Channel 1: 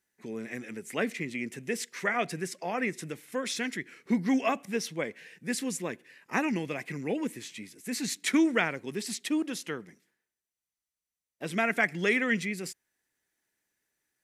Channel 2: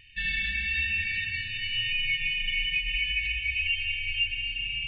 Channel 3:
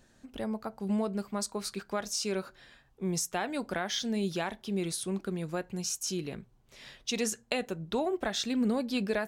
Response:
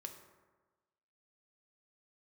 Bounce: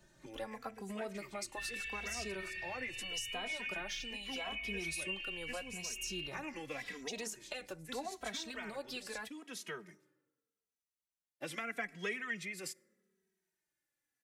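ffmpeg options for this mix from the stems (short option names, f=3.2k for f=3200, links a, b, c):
-filter_complex "[0:a]agate=range=-6dB:threshold=-52dB:ratio=16:detection=peak,volume=0dB,asplit=2[a][b];[b]volume=-14.5dB[c];[1:a]adelay=1400,volume=-8dB[d];[2:a]alimiter=limit=-24dB:level=0:latency=1:release=115,volume=0.5dB,asplit=2[e][f];[f]apad=whole_len=627917[g];[a][g]sidechaincompress=threshold=-45dB:ratio=5:attack=16:release=533[h];[3:a]atrim=start_sample=2205[i];[c][i]afir=irnorm=-1:irlink=0[j];[h][d][e][j]amix=inputs=4:normalize=0,acrossover=split=83|490[k][l][m];[k]acompressor=threshold=-53dB:ratio=4[n];[l]acompressor=threshold=-49dB:ratio=4[o];[m]acompressor=threshold=-36dB:ratio=4[p];[n][o][p]amix=inputs=3:normalize=0,asplit=2[q][r];[r]adelay=2.8,afreqshift=-0.81[s];[q][s]amix=inputs=2:normalize=1"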